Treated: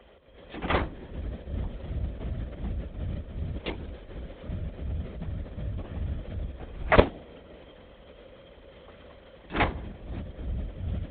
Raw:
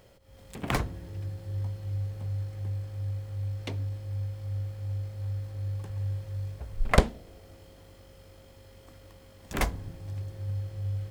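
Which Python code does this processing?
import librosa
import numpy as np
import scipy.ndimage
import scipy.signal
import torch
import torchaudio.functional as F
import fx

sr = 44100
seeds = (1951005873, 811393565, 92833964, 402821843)

y = fx.comb(x, sr, ms=4.3, depth=0.74, at=(3.58, 4.48))
y = fx.lpc_vocoder(y, sr, seeds[0], excitation='whisper', order=16)
y = scipy.signal.sosfilt(scipy.signal.butter(2, 46.0, 'highpass', fs=sr, output='sos'), y)
y = fx.peak_eq(y, sr, hz=120.0, db=-11.0, octaves=0.69)
y = y * librosa.db_to_amplitude(5.0)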